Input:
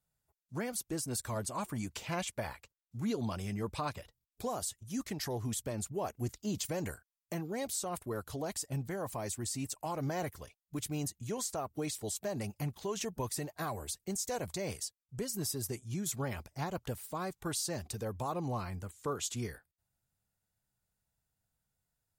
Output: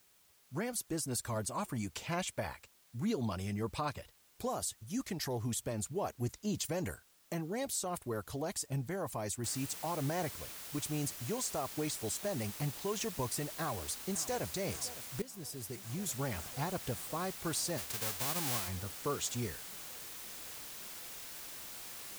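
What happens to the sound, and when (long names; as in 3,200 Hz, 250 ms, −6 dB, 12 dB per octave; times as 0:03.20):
0:09.44: noise floor change −67 dB −47 dB
0:13.53–0:14.45: delay throw 560 ms, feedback 85%, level −15.5 dB
0:15.22–0:16.37: fade in, from −14 dB
0:17.77–0:18.67: spectral envelope flattened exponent 0.3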